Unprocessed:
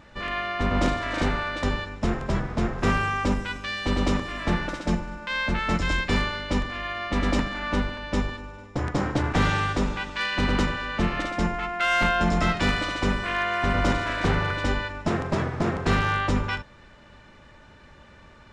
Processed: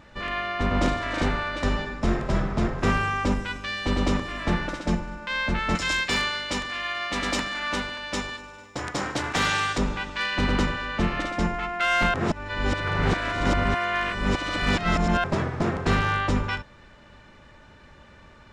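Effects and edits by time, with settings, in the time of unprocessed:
1.49–2.59 reverb throw, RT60 1 s, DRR 4.5 dB
5.75–9.78 tilt +3 dB/oct
12.14–15.24 reverse

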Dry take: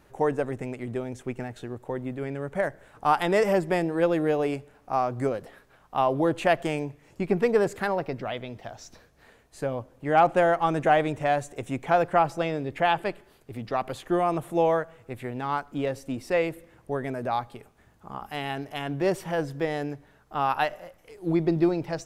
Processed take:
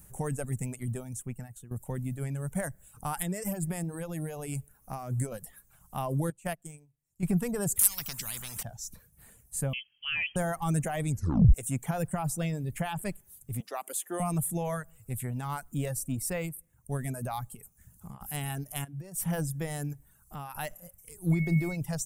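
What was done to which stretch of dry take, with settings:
0.84–1.71 fade out, to -12.5 dB
3.2–5.32 compressor 8:1, threshold -26 dBFS
6.3–7.23 upward expander 2.5:1, over -33 dBFS
7.79–8.63 spectral compressor 10:1
9.73–10.36 inverted band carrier 3200 Hz
11.09 tape stop 0.45 s
13.6–14.2 HPF 320 Hz 24 dB/oct
16.46–16.99 upward expander, over -38 dBFS
17.5–18.21 compressor, threshold -39 dBFS
18.84–19.25 compressor 10:1, threshold -37 dBFS
19.93–20.55 compressor 2:1, threshold -37 dBFS
21.32–21.75 whine 2200 Hz -29 dBFS
whole clip: reverb removal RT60 0.74 s; limiter -17.5 dBFS; EQ curve 180 Hz 0 dB, 330 Hz -16 dB, 4500 Hz -11 dB, 8800 Hz +13 dB; gain +6.5 dB

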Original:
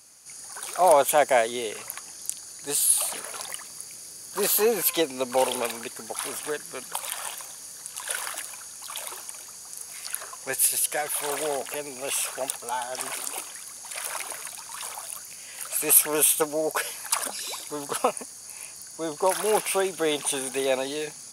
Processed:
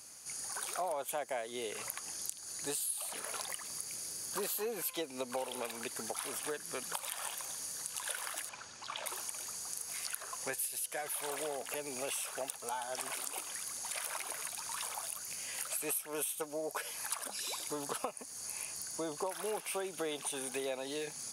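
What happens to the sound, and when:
8.49–9.06 air absorption 130 m
whole clip: compressor 6:1, threshold -36 dBFS

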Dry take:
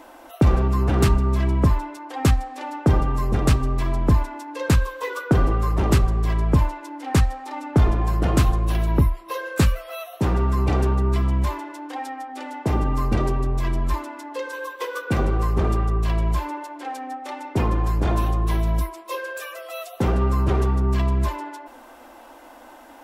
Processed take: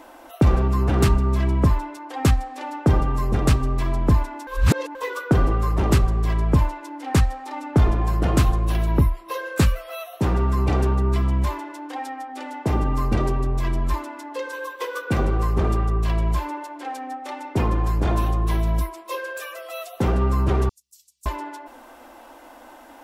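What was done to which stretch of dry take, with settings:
4.47–4.95 reverse
20.69–21.26 inverse Chebyshev high-pass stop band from 1500 Hz, stop band 70 dB

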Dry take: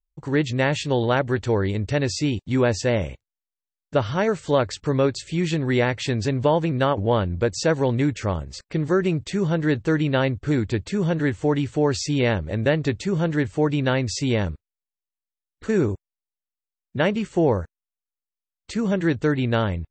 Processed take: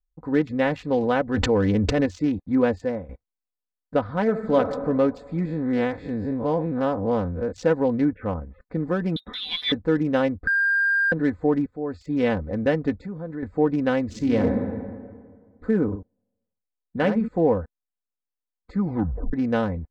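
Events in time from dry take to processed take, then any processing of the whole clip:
1.34–2.06 fast leveller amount 100%
2.69–3.09 fade out, to -13.5 dB
4.22–4.63 reverb throw, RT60 1.8 s, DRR 5.5 dB
5.45–7.52 time blur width 0.102 s
8.08–8.61 elliptic low-pass 3000 Hz
9.16–9.72 inverted band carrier 3800 Hz
10.47–11.12 bleep 1600 Hz -10.5 dBFS
11.66–12.27 fade in, from -19.5 dB
12.98–13.43 compressor 3:1, threshold -31 dBFS
14.05–14.48 reverb throw, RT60 1.8 s, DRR -1 dB
15.85–17.28 echo 71 ms -7.5 dB
18.73 tape stop 0.60 s
whole clip: Wiener smoothing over 15 samples; LPF 2200 Hz 6 dB/oct; comb 4 ms, depth 71%; gain -1.5 dB

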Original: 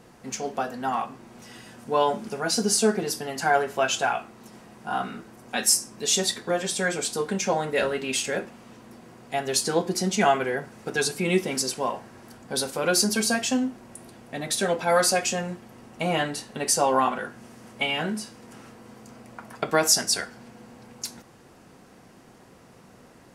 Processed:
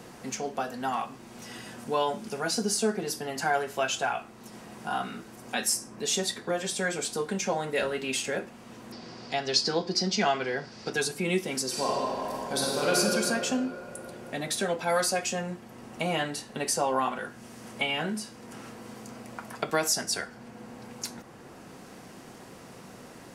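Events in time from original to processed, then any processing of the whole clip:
8.92–10.93 synth low-pass 4900 Hz
11.67–12.98 reverb throw, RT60 2.6 s, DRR -4.5 dB
whole clip: three-band squash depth 40%; gain -4 dB

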